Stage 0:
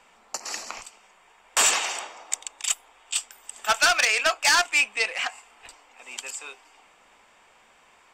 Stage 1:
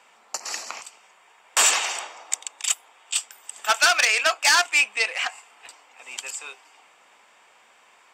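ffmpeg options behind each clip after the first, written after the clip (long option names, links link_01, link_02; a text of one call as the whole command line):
ffmpeg -i in.wav -af "highpass=frequency=440:poles=1,volume=2dB" out.wav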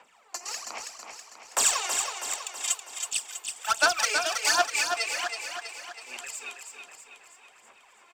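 ffmpeg -i in.wav -filter_complex "[0:a]acrossover=split=110|1400|3500[link_01][link_02][link_03][link_04];[link_03]acompressor=threshold=-34dB:ratio=6[link_05];[link_01][link_02][link_05][link_04]amix=inputs=4:normalize=0,aphaser=in_gain=1:out_gain=1:delay=2.9:decay=0.72:speed=1.3:type=sinusoidal,aecho=1:1:324|648|972|1296|1620|1944|2268:0.501|0.271|0.146|0.0789|0.0426|0.023|0.0124,volume=-7dB" out.wav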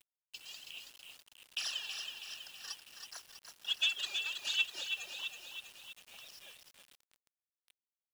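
ffmpeg -i in.wav -af "afftfilt=real='real(if(lt(b,920),b+92*(1-2*mod(floor(b/92),2)),b),0)':imag='imag(if(lt(b,920),b+92*(1-2*mod(floor(b/92),2)),b),0)':win_size=2048:overlap=0.75,bandpass=frequency=2800:width_type=q:width=2:csg=0,acrusher=bits=7:mix=0:aa=0.000001,volume=-7dB" out.wav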